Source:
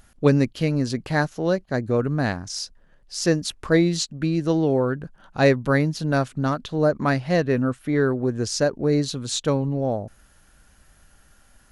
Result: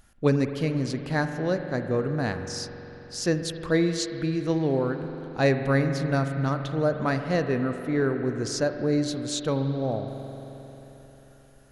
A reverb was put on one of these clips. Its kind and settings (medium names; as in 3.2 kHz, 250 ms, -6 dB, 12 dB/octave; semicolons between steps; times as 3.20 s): spring tank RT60 3.9 s, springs 44 ms, chirp 40 ms, DRR 7 dB; trim -4.5 dB